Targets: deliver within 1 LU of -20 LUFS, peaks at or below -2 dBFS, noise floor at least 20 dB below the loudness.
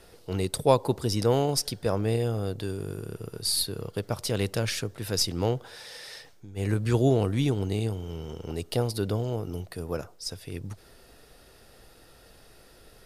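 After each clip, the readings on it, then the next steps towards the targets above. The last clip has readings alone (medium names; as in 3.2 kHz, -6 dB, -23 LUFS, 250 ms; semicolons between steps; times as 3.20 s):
loudness -28.5 LUFS; peak level -6.0 dBFS; loudness target -20.0 LUFS
-> trim +8.5 dB; peak limiter -2 dBFS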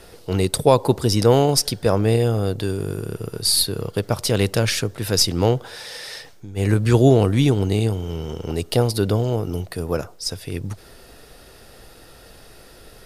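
loudness -20.0 LUFS; peak level -2.0 dBFS; noise floor -46 dBFS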